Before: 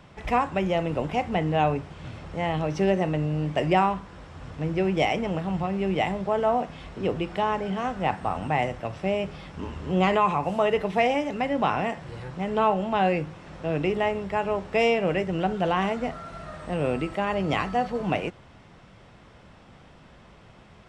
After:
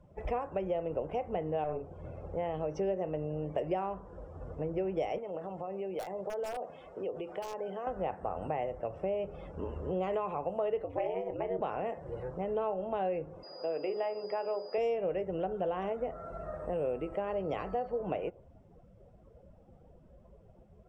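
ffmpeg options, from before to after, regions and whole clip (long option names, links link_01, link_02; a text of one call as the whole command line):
ffmpeg -i in.wav -filter_complex "[0:a]asettb=1/sr,asplit=3[link_01][link_02][link_03];[link_01]atrim=end=1.644[link_04];[link_02]atrim=start=1.64:end=2.37,asetpts=PTS-STARTPTS,afade=type=in:duration=0.004:curve=qsin,afade=type=out:start_time=0.726:duration=0.004:curve=qsin,acrossover=split=2800[link_05][link_06];[link_06]acompressor=threshold=-55dB:ratio=4:attack=1:release=60[link_07];[link_05][link_07]amix=inputs=2:normalize=0,asplit=2[link_08][link_09];[link_09]adelay=47,volume=-6.5dB[link_10];[link_08][link_10]amix=inputs=2:normalize=0,atrim=end_sample=32193,aeval=exprs='(tanh(10*val(0)+0.45)-tanh(0.45))/10':channel_layout=same[link_11];[link_03]atrim=start=2.366[link_12];[link_04][link_11]acrossfade=duration=0.004:curve1=hsin:curve2=qsin[link_13];[link_13][link_12]acrossfade=duration=0.004:curve1=qsin:curve2=hsin,asettb=1/sr,asplit=3[link_14][link_15][link_16];[link_14]atrim=end=5.184[link_17];[link_15]atrim=start=5.18:end=7.87,asetpts=PTS-STARTPTS,afade=type=in:duration=0.004:curve=qsin,afade=type=out:start_time=2.686:duration=0.004:curve=qsin,highpass=frequency=420:poles=1,aeval=exprs='(mod(7.08*val(0)+1,2)-1)/7.08':channel_layout=same,acompressor=threshold=-33dB:ratio=4:attack=3.2:release=140:knee=1:detection=peak[link_18];[link_16]atrim=start=7.866[link_19];[link_17][link_18]acrossfade=duration=0.004:curve1=hsin:curve2=qsin[link_20];[link_20][link_19]acrossfade=duration=0.004:curve1=qsin:curve2=hsin,asettb=1/sr,asplit=3[link_21][link_22][link_23];[link_21]atrim=end=10.844[link_24];[link_22]atrim=start=10.84:end=11.61,asetpts=PTS-STARTPTS,afade=type=in:duration=0.004:curve=qsin,afade=type=out:start_time=0.766:duration=0.004:curve=qsin,highshelf=frequency=4500:gain=-5,aeval=exprs='val(0)*sin(2*PI*93*n/s)':channel_layout=same,asplit=2[link_25][link_26];[link_26]adelay=32,volume=-12dB[link_27];[link_25][link_27]amix=inputs=2:normalize=0,atrim=end_sample=33957[link_28];[link_23]atrim=start=11.606[link_29];[link_24][link_28]acrossfade=duration=0.004:curve1=hsin:curve2=qsin[link_30];[link_30][link_29]acrossfade=duration=0.004:curve1=qsin:curve2=hsin,asettb=1/sr,asplit=3[link_31][link_32][link_33];[link_31]atrim=end=13.434[link_34];[link_32]atrim=start=13.43:end=14.78,asetpts=PTS-STARTPTS,afade=type=in:duration=0.004:curve=qsin,afade=type=out:start_time=1.346:duration=0.004:curve=qsin,bandreject=frequency=60:width_type=h:width=6,bandreject=frequency=120:width_type=h:width=6,bandreject=frequency=180:width_type=h:width=6,bandreject=frequency=240:width_type=h:width=6,bandreject=frequency=300:width_type=h:width=6,bandreject=frequency=360:width_type=h:width=6,bandreject=frequency=420:width_type=h:width=6,bandreject=frequency=480:width_type=h:width=6,bandreject=frequency=540:width_type=h:width=6,bandreject=frequency=600:width_type=h:width=6,aeval=exprs='val(0)+0.01*sin(2*PI*4900*n/s)':channel_layout=same,highpass=350,lowpass=6500[link_35];[link_33]atrim=start=14.776[link_36];[link_34][link_35]acrossfade=duration=0.004:curve1=hsin:curve2=qsin[link_37];[link_37][link_36]acrossfade=duration=0.004:curve1=qsin:curve2=hsin,afftdn=noise_reduction=18:noise_floor=-45,equalizer=frequency=125:width_type=o:width=1:gain=-7,equalizer=frequency=250:width_type=o:width=1:gain=-7,equalizer=frequency=500:width_type=o:width=1:gain=8,equalizer=frequency=1000:width_type=o:width=1:gain=-5,equalizer=frequency=2000:width_type=o:width=1:gain=-7,equalizer=frequency=4000:width_type=o:width=1:gain=-11,acompressor=threshold=-33dB:ratio=3" out.wav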